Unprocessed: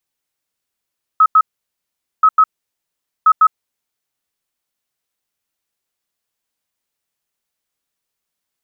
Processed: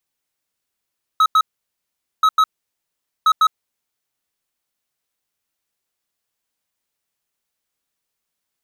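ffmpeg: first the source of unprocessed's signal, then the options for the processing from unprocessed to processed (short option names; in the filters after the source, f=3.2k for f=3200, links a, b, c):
-f lavfi -i "aevalsrc='0.531*sin(2*PI*1280*t)*clip(min(mod(mod(t,1.03),0.15),0.06-mod(mod(t,1.03),0.15))/0.005,0,1)*lt(mod(t,1.03),0.3)':d=3.09:s=44100"
-af "asoftclip=type=hard:threshold=-11.5dB"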